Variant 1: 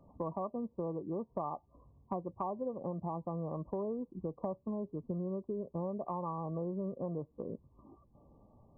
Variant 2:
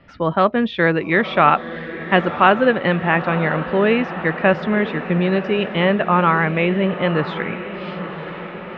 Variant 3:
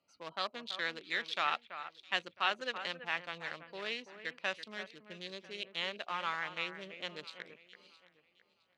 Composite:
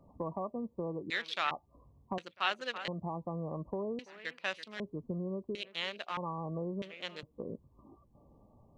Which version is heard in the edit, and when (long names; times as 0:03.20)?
1
0:01.10–0:01.51: punch in from 3
0:02.18–0:02.88: punch in from 3
0:03.99–0:04.80: punch in from 3
0:05.55–0:06.17: punch in from 3
0:06.82–0:07.23: punch in from 3
not used: 2